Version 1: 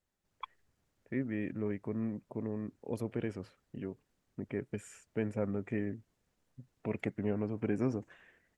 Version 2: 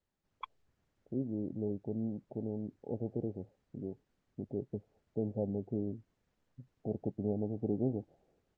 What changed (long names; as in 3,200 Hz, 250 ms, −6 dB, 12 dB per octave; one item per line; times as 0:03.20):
second voice: add Chebyshev low-pass filter 850 Hz, order 10
master: add high-frequency loss of the air 79 metres